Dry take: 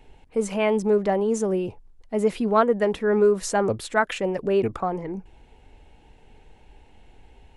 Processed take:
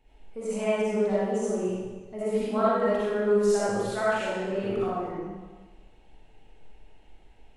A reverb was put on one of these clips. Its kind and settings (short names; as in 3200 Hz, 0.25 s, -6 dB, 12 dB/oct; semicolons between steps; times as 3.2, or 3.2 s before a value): digital reverb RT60 1.3 s, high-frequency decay 0.95×, pre-delay 20 ms, DRR -10 dB; gain -14.5 dB